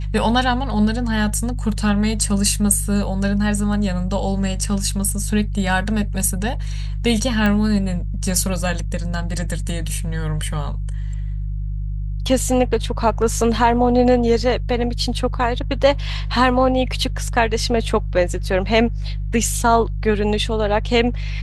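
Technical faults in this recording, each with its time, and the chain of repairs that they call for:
hum 50 Hz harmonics 3 -24 dBFS
7.46 s: pop -9 dBFS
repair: de-click; de-hum 50 Hz, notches 3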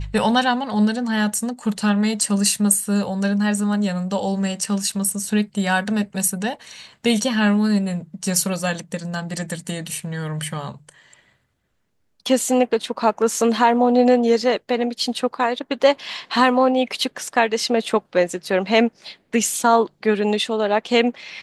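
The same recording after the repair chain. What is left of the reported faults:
nothing left

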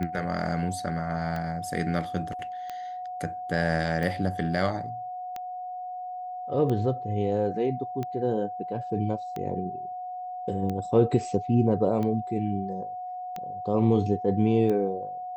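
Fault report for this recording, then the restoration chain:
tick 45 rpm -20 dBFS
whine 730 Hz -33 dBFS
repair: de-click; band-stop 730 Hz, Q 30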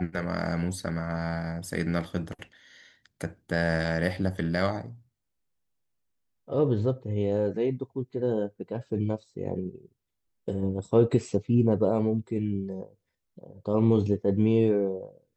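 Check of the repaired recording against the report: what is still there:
nothing left

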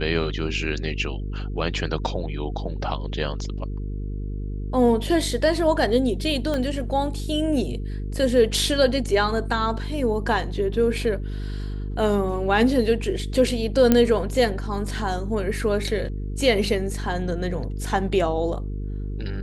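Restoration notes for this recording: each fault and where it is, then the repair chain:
buzz 50 Hz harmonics 9 -29 dBFS
6.54 s: pop -14 dBFS
13.92 s: pop -4 dBFS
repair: de-click; de-hum 50 Hz, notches 9

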